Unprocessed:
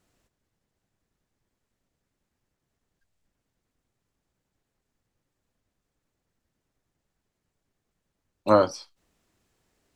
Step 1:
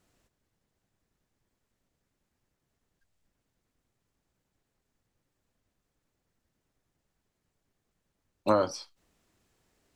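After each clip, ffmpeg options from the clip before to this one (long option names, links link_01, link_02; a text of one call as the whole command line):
ffmpeg -i in.wav -af "acompressor=threshold=-20dB:ratio=6" out.wav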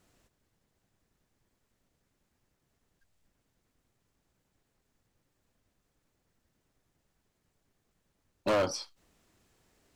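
ffmpeg -i in.wav -af "volume=27dB,asoftclip=hard,volume=-27dB,volume=3dB" out.wav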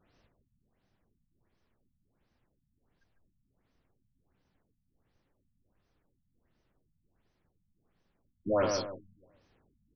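ffmpeg -i in.wav -filter_complex "[0:a]asplit=2[link_01][link_02];[link_02]adelay=149,lowpass=frequency=1800:poles=1,volume=-5dB,asplit=2[link_03][link_04];[link_04]adelay=149,lowpass=frequency=1800:poles=1,volume=0.37,asplit=2[link_05][link_06];[link_06]adelay=149,lowpass=frequency=1800:poles=1,volume=0.37,asplit=2[link_07][link_08];[link_08]adelay=149,lowpass=frequency=1800:poles=1,volume=0.37,asplit=2[link_09][link_10];[link_10]adelay=149,lowpass=frequency=1800:poles=1,volume=0.37[link_11];[link_01][link_03][link_05][link_07][link_09][link_11]amix=inputs=6:normalize=0,afftfilt=real='re*lt(b*sr/1024,230*pow(6500/230,0.5+0.5*sin(2*PI*1.4*pts/sr)))':imag='im*lt(b*sr/1024,230*pow(6500/230,0.5+0.5*sin(2*PI*1.4*pts/sr)))':win_size=1024:overlap=0.75" out.wav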